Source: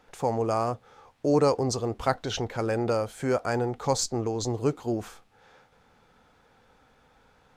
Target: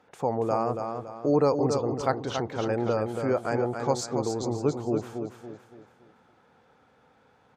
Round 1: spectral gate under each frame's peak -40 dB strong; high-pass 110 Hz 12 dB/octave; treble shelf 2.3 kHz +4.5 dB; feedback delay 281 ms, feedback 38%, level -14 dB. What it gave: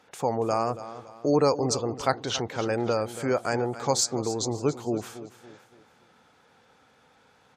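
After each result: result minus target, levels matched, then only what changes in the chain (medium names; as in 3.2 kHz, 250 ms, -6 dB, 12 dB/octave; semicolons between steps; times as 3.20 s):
4 kHz band +7.5 dB; echo-to-direct -8 dB
change: treble shelf 2.3 kHz -7.5 dB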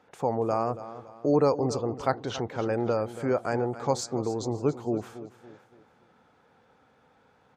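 echo-to-direct -8 dB
change: feedback delay 281 ms, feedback 38%, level -6 dB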